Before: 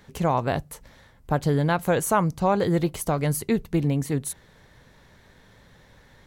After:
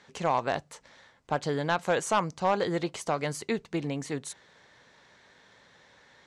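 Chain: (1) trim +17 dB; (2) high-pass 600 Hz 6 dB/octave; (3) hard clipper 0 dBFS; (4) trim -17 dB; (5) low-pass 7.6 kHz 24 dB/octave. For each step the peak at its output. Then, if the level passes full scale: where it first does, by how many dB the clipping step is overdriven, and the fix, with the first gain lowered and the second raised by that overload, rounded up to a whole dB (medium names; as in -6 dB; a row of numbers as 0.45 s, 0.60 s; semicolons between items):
+8.0 dBFS, +7.0 dBFS, 0.0 dBFS, -17.0 dBFS, -16.5 dBFS; step 1, 7.0 dB; step 1 +10 dB, step 4 -10 dB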